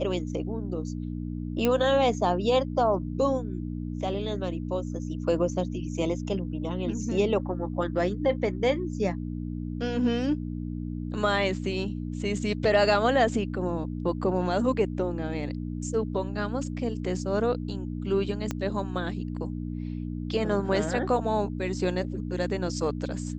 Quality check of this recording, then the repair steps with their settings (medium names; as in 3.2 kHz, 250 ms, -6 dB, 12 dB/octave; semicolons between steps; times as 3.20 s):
hum 60 Hz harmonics 5 -33 dBFS
1.65 s: pop -11 dBFS
18.51 s: pop -16 dBFS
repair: de-click; de-hum 60 Hz, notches 5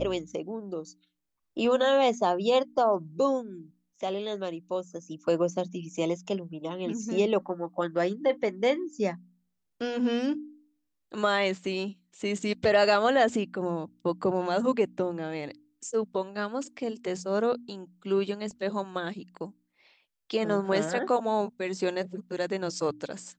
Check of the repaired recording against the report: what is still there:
18.51 s: pop